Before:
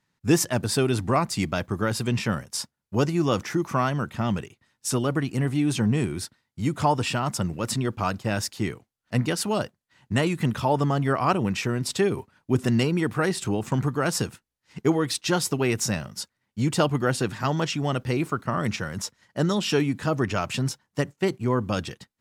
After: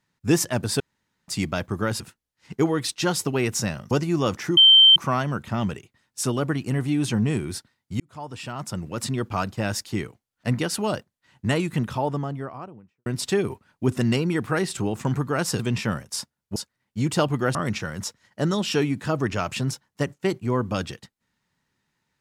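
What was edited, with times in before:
0:00.80–0:01.28: fill with room tone
0:02.00–0:02.97: swap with 0:14.26–0:16.17
0:03.63: insert tone 3,120 Hz −9 dBFS 0.39 s
0:06.67–0:07.89: fade in
0:10.20–0:11.73: fade out and dull
0:17.16–0:18.53: remove

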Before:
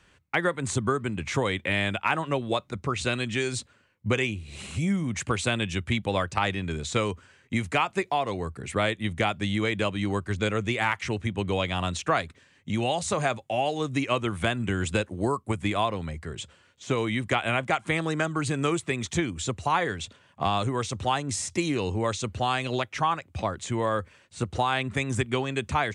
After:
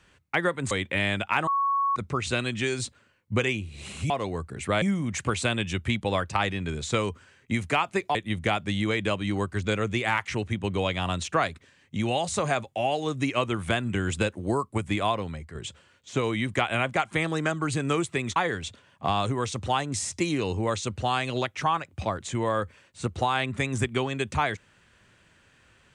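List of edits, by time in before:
0:00.71–0:01.45: remove
0:02.21–0:02.70: beep over 1,110 Hz −21.5 dBFS
0:08.17–0:08.89: move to 0:04.84
0:15.94–0:16.29: fade out, to −7 dB
0:19.10–0:19.73: remove

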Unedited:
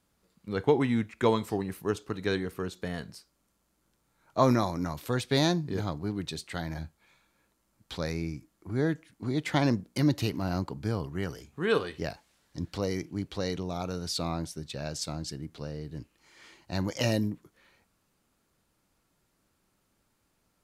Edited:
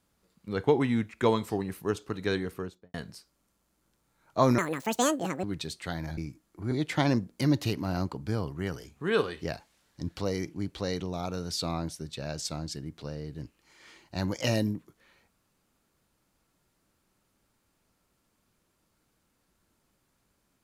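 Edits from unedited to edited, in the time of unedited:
0:02.49–0:02.94: fade out and dull
0:04.58–0:06.11: play speed 179%
0:06.85–0:08.25: remove
0:08.79–0:09.28: remove

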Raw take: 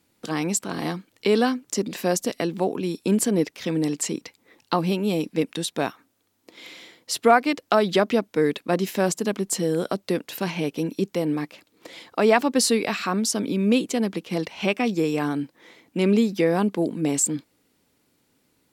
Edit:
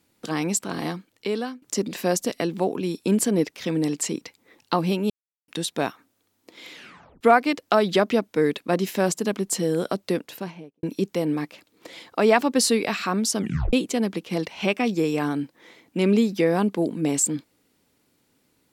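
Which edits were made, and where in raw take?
0:00.75–0:01.62: fade out, to −15 dB
0:05.10–0:05.48: silence
0:06.72: tape stop 0.49 s
0:10.09–0:10.83: fade out and dull
0:13.39: tape stop 0.34 s

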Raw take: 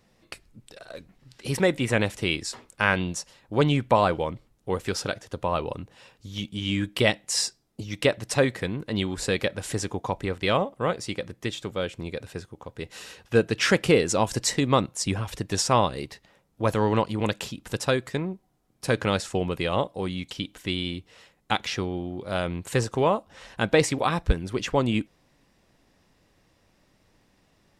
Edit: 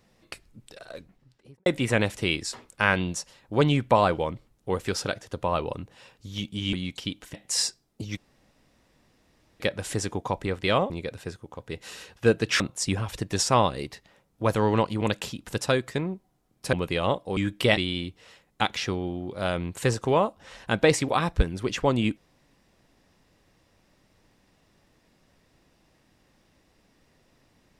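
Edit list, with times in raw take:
0:00.85–0:01.66: fade out and dull
0:06.73–0:07.13: swap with 0:20.06–0:20.67
0:07.96–0:09.39: fill with room tone
0:10.69–0:11.99: remove
0:13.69–0:14.79: remove
0:18.92–0:19.42: remove

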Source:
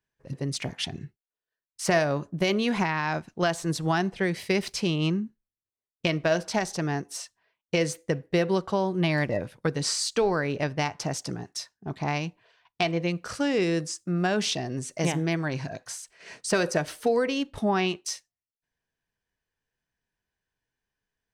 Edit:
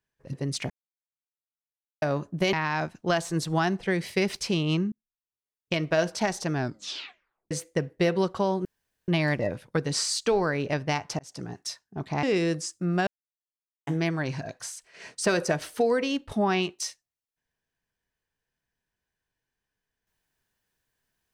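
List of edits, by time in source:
0:00.70–0:02.02: silence
0:02.53–0:02.86: remove
0:05.25–0:06.26: fade in
0:06.86: tape stop 0.98 s
0:08.98: splice in room tone 0.43 s
0:11.09–0:11.44: fade in
0:12.13–0:13.49: remove
0:14.33–0:15.13: silence

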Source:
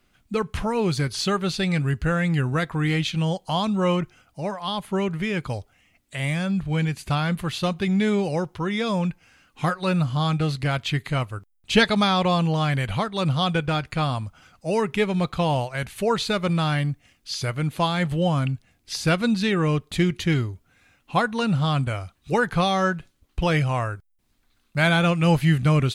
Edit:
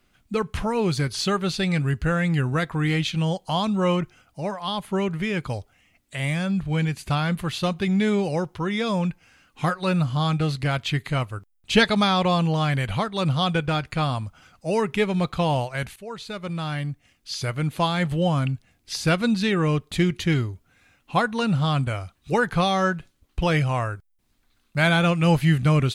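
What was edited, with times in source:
0:15.96–0:17.59: fade in, from −17.5 dB

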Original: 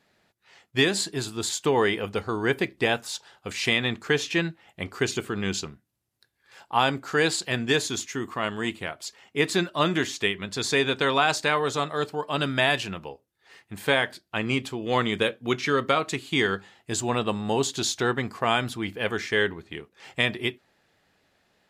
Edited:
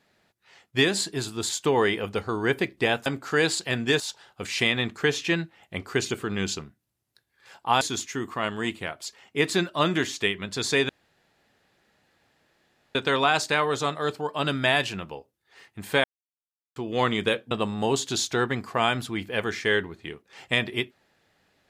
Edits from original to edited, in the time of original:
0:06.87–0:07.81: move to 0:03.06
0:10.89: splice in room tone 2.06 s
0:13.98–0:14.70: silence
0:15.45–0:17.18: remove

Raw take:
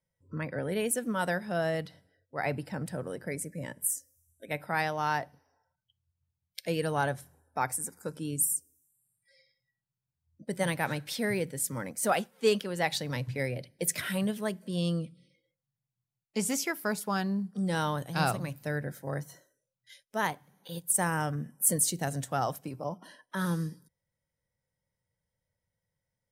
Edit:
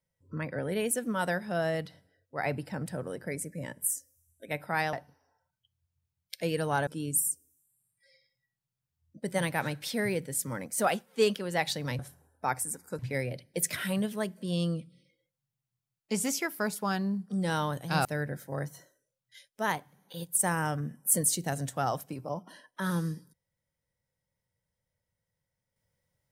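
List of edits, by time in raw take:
0:04.93–0:05.18: remove
0:07.12–0:08.12: move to 0:13.24
0:18.30–0:18.60: remove

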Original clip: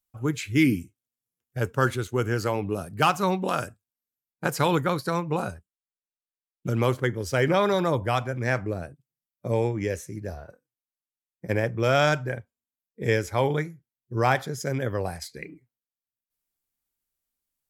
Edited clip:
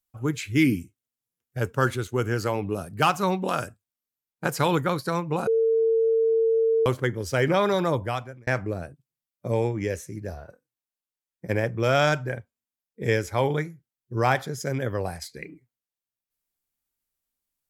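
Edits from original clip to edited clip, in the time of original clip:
0:05.47–0:06.86: beep over 451 Hz −18 dBFS
0:07.94–0:08.47: fade out

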